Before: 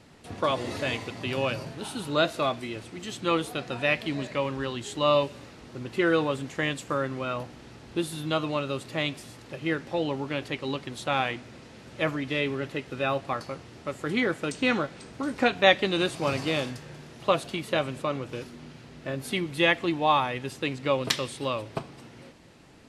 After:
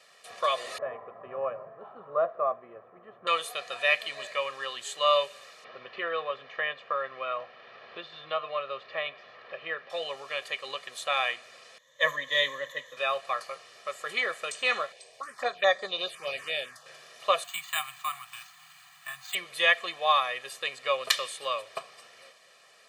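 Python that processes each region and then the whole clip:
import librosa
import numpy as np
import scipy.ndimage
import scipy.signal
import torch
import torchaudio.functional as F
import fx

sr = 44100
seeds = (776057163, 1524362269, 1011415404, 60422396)

y = fx.chain(x, sr, fx.lowpass(hz=1200.0, slope=24),
    fx.low_shelf(hz=430.0, db=5.0), at=(0.78, 3.27))
y = fx.chain(y, sr, fx.gaussian_blur(sigma=2.8),
    fx.band_squash(depth_pct=40), at=(5.64, 9.9))
y = fx.chain(y, sr, fx.ripple_eq(per_octave=1.1, db=17),
    fx.band_widen(depth_pct=70), at=(11.78, 12.97))
y = fx.chain(y, sr, fx.high_shelf(hz=4200.0, db=-4.5),
    fx.env_phaser(low_hz=190.0, high_hz=2800.0, full_db=-19.5), at=(14.92, 16.86))
y = fx.chain(y, sr, fx.cheby1_bandstop(low_hz=190.0, high_hz=730.0, order=5),
    fx.resample_bad(factor=4, down='filtered', up='hold'), at=(17.44, 19.35))
y = scipy.signal.sosfilt(scipy.signal.bessel(2, 1000.0, 'highpass', norm='mag', fs=sr, output='sos'), y)
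y = fx.dynamic_eq(y, sr, hz=5400.0, q=5.1, threshold_db=-59.0, ratio=4.0, max_db=-5)
y = y + 0.86 * np.pad(y, (int(1.7 * sr / 1000.0), 0))[:len(y)]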